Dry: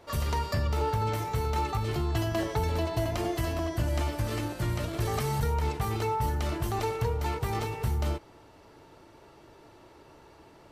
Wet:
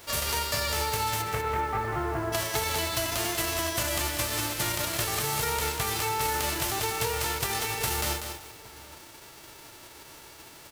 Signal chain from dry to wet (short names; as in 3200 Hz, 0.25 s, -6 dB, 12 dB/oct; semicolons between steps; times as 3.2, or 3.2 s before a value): spectral whitening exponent 0.3; 1.21–2.32 LPF 2600 Hz -> 1300 Hz 24 dB/oct; compressor 4:1, threshold -33 dBFS, peak gain reduction 9 dB; outdoor echo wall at 140 m, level -18 dB; lo-fi delay 0.193 s, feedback 35%, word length 8-bit, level -6 dB; gain +5.5 dB